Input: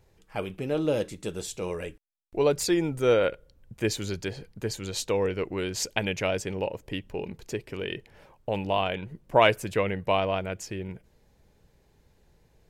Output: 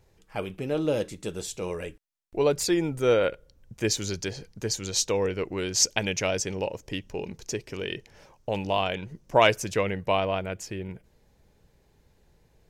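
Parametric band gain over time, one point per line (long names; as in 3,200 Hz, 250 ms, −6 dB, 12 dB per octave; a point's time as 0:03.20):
parametric band 5,900 Hz 0.69 octaves
0:03.13 +2 dB
0:04.17 +11.5 dB
0:05.05 +11.5 dB
0:05.37 +4.5 dB
0:05.78 +12.5 dB
0:09.70 +12.5 dB
0:10.30 +0.5 dB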